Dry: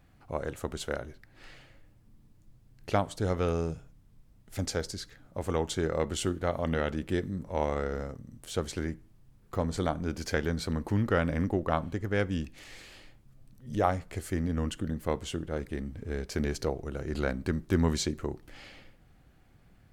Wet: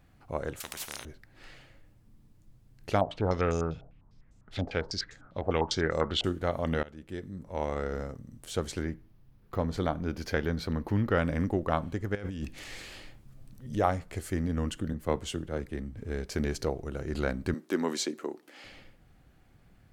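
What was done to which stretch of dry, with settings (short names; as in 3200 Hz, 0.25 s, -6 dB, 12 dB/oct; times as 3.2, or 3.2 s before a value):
0.6–1.05 spectral compressor 10:1
3.01–6.24 stepped low-pass 10 Hz 700–7200 Hz
6.83–7.98 fade in, from -19.5 dB
8.82–11.18 bell 8000 Hz -11 dB
12.15–13.67 negative-ratio compressor -36 dBFS
14.93–15.97 three-band expander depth 40%
17.54–18.64 HPF 250 Hz 24 dB/oct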